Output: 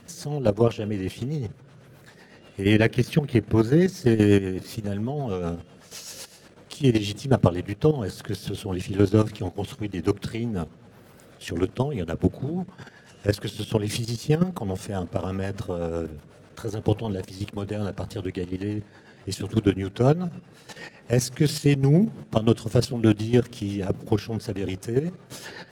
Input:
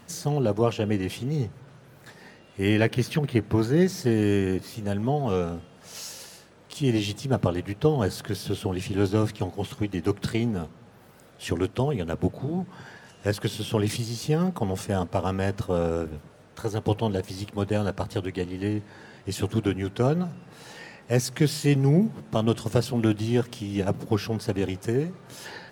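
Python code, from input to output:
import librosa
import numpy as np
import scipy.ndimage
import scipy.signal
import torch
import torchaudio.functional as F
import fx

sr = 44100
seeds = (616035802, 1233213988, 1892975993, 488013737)

y = fx.level_steps(x, sr, step_db=11)
y = fx.rotary(y, sr, hz=8.0)
y = F.gain(torch.from_numpy(y), 7.0).numpy()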